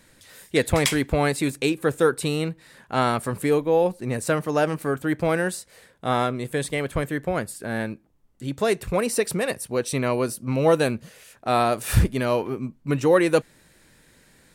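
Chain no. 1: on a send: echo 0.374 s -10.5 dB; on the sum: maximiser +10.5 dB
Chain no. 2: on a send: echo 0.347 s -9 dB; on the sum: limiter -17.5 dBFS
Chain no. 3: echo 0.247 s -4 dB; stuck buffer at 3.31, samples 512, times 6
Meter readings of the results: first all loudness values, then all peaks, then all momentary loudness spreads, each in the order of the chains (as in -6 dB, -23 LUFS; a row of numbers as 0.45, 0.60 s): -14.0, -28.0, -22.5 LUFS; -1.0, -17.5, -4.5 dBFS; 8, 6, 8 LU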